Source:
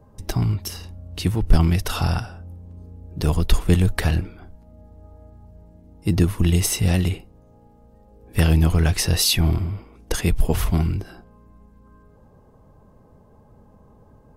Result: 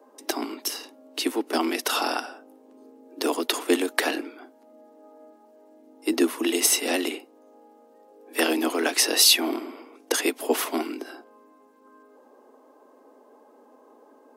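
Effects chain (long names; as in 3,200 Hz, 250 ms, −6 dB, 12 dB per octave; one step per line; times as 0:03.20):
Butterworth high-pass 250 Hz 96 dB per octave
level +3 dB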